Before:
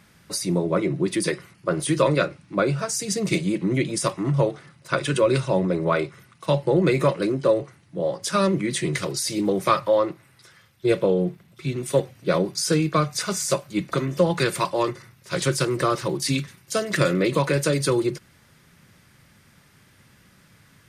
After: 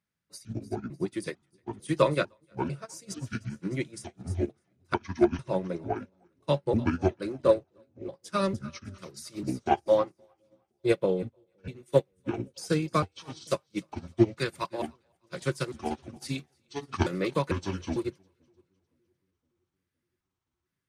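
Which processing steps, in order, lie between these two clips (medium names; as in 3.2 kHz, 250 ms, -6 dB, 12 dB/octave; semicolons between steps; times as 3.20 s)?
pitch shift switched off and on -7.5 st, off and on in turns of 449 ms; two-band feedback delay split 500 Hz, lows 516 ms, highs 303 ms, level -14.5 dB; upward expansion 2.5:1, over -36 dBFS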